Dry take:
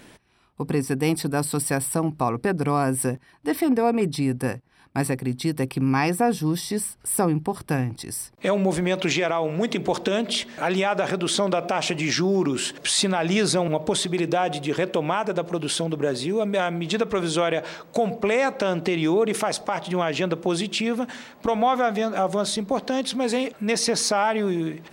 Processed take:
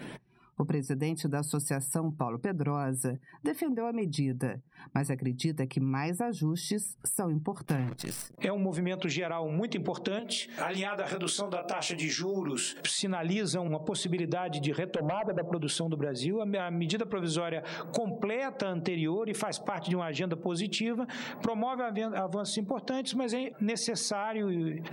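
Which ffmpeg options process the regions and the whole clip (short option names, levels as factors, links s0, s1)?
-filter_complex "[0:a]asettb=1/sr,asplit=3[s0][s1][s2];[s0]atrim=end=7.654[s3];[s1]atrim=start=7.65:end=8.37,asetpts=PTS-STARTPTS,afade=t=in:d=0.004:c=qsin,afade=t=out:st=0.716:d=0.004:c=qsin,acrossover=split=5900[s4][s5];[s5]acompressor=threshold=0.0158:ratio=4:attack=1:release=60[s6];[s4][s6]amix=inputs=2:normalize=0,acrusher=bits=6:dc=4:mix=0:aa=0.000001[s7];[s2]atrim=start=8.366[s8];[s3][s7]acrossfade=d=0.004:c1=hsin:c2=qsin[s9];[s9][s8]acrossfade=d=0.004:c1=qsin:c2=hsin,asettb=1/sr,asplit=3[s10][s11][s12];[s10]atrim=end=10.194[s13];[s11]atrim=start=10.19:end=12.85,asetpts=PTS-STARTPTS,afade=t=in:d=0.004:c=qsin,afade=t=out:st=2.656:d=0.004:c=qsin,highpass=f=340:p=1,highshelf=f=8400:g=11.5,flanger=delay=20:depth=5.5:speed=1.3[s14];[s12]atrim=start=12.846[s15];[s13][s14]acrossfade=d=0.004:c1=hsin:c2=qsin[s16];[s16][s15]acrossfade=d=0.004:c1=qsin:c2=hsin,asettb=1/sr,asplit=3[s17][s18][s19];[s17]atrim=end=14.964[s20];[s18]atrim=start=14.96:end=15.52,asetpts=PTS-STARTPTS,afade=t=in:d=0.004:c=qsin,afade=t=out:st=0.556:d=0.004:c=qsin,lowpass=f=1300:w=0.5412,lowpass=f=1300:w=1.3066,equalizer=f=590:t=o:w=0.56:g=7.5,volume=9.44,asoftclip=hard,volume=0.106[s21];[s19]atrim=start=15.516[s22];[s20][s21]acrossfade=d=0.004:c1=hsin:c2=qsin[s23];[s23][s22]acrossfade=d=0.004:c1=qsin:c2=hsin,acompressor=threshold=0.0158:ratio=10,afftdn=nr=22:nf=-57,lowshelf=f=110:t=q:w=3:g=-7,volume=2"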